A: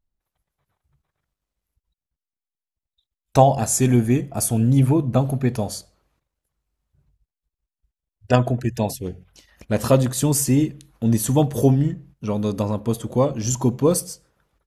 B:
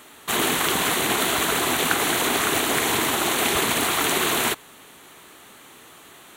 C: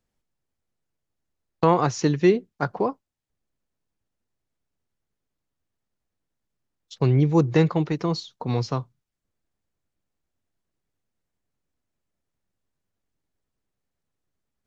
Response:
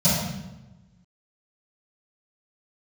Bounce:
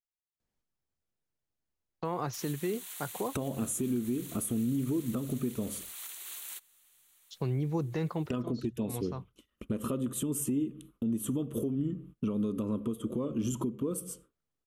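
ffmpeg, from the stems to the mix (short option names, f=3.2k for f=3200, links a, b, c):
-filter_complex "[0:a]agate=range=-33dB:threshold=-41dB:ratio=3:detection=peak,firequalizer=gain_entry='entry(130,0);entry(220,11);entry(390,10);entry(780,-11);entry(1200,9);entry(1700,-7);entry(3100,6);entry(4600,-14);entry(8600,3)':delay=0.05:min_phase=1,volume=-1.5dB[a];[1:a]aderivative,alimiter=limit=-15dB:level=0:latency=1:release=256,adelay=2050,volume=-15dB[b];[2:a]alimiter=limit=-13.5dB:level=0:latency=1,adelay=400,volume=-6.5dB[c];[a][c]amix=inputs=2:normalize=0,acompressor=threshold=-19dB:ratio=6,volume=0dB[d];[b][d]amix=inputs=2:normalize=0,alimiter=limit=-23.5dB:level=0:latency=1:release=481"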